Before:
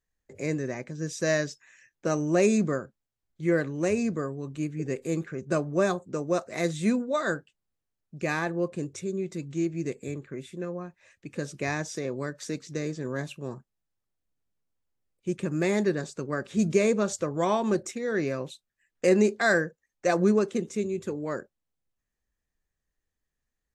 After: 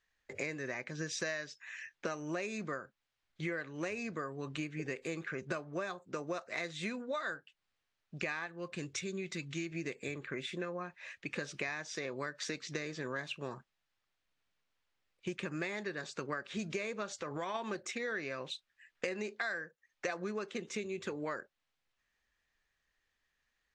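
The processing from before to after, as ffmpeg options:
-filter_complex "[0:a]asettb=1/sr,asplit=3[s0][s1][s2];[s0]atrim=end=8.464[s3];[s1]atrim=start=8.46:end=9.72,asetpts=PTS-STARTPTS,afade=t=in:d=0.004:c=qsin,afade=t=out:st=1.256:d=0.004:c=qsin,equalizer=f=580:w=0.54:g=-7.5[s4];[s2]atrim=start=9.716[s5];[s3][s4]acrossfade=d=0.004:c1=hsin:c2=qsin[s6];[s6][s5]acrossfade=d=0.004:c1=qsin:c2=hsin,asplit=3[s7][s8][s9];[s7]afade=t=out:st=17.09:d=0.02[s10];[s8]acompressor=threshold=0.0355:ratio=6:attack=3.2:release=140:knee=1:detection=peak,afade=t=in:st=17.09:d=0.02,afade=t=out:st=17.54:d=0.02[s11];[s9]afade=t=in:st=17.54:d=0.02[s12];[s10][s11][s12]amix=inputs=3:normalize=0,lowpass=3500,tiltshelf=f=760:g=-9.5,acompressor=threshold=0.01:ratio=12,volume=1.78"

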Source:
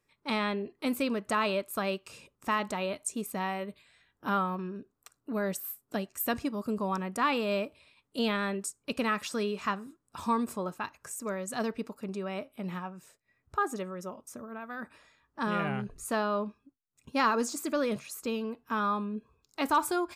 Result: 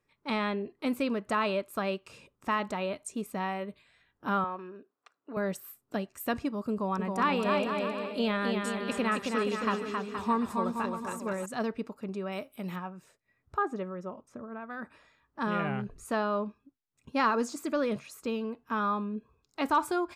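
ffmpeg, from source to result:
-filter_complex "[0:a]asettb=1/sr,asplit=3[s0][s1][s2];[s0]atrim=end=4.444[s3];[s1]atrim=start=4.44:end=5.37,asetpts=PTS-STARTPTS,afade=t=in:d=0.004:c=qsin,afade=t=out:st=0.926:d=0.004:c=qsin,highpass=390,lowpass=3700[s4];[s2]atrim=start=5.366[s5];[s3][s4]acrossfade=d=0.004:c1=hsin:c2=qsin[s6];[s6][s5]acrossfade=d=0.004:c1=qsin:c2=hsin,asettb=1/sr,asplit=3[s7][s8][s9];[s7]atrim=end=6.724[s10];[s8]atrim=start=6.72:end=11.46,asetpts=PTS-STARTPTS,afade=t=in:d=0.004:c=qsin,afade=t=out:st=4.736:d=0.004:c=qsin,aecho=1:1:270|472.5|624.4|738.3|823.7:0.631|0.398|0.251|0.158|0.1,atrim=end_sample=209034[s11];[s9]atrim=start=11.456[s12];[s10][s11]acrossfade=d=0.004:c1=hsin:c2=qsin[s13];[s13][s12]acrossfade=d=0.004:c1=qsin:c2=hsin,asettb=1/sr,asplit=3[s14][s15][s16];[s14]atrim=end=12.324[s17];[s15]atrim=start=12.32:end=12.76,asetpts=PTS-STARTPTS,afade=t=in:d=0.004:c=qsin,afade=t=out:st=0.436:d=0.004:c=qsin,aemphasis=mode=production:type=75fm[s18];[s16]atrim=start=12.756[s19];[s17][s18]acrossfade=d=0.004:c1=hsin:c2=qsin[s20];[s20][s19]acrossfade=d=0.004:c1=qsin:c2=hsin,asettb=1/sr,asplit=3[s21][s22][s23];[s21]atrim=end=13.584[s24];[s22]atrim=start=13.58:end=14.7,asetpts=PTS-STARTPTS,afade=t=in:d=0.004:c=qsin,afade=t=out:st=1.116:d=0.004:c=qsin,aemphasis=mode=reproduction:type=75fm[s25];[s23]atrim=start=14.696[s26];[s24][s25]acrossfade=d=0.004:c1=hsin:c2=qsin[s27];[s27][s26]acrossfade=d=0.004:c1=qsin:c2=hsin,aemphasis=mode=reproduction:type=cd"

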